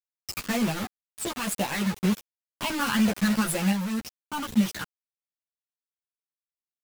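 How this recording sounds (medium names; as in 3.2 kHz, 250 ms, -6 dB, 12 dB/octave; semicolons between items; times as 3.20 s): phasing stages 12, 2 Hz, lowest notch 610–1600 Hz; a quantiser's noise floor 6-bit, dither none; random-step tremolo; a shimmering, thickened sound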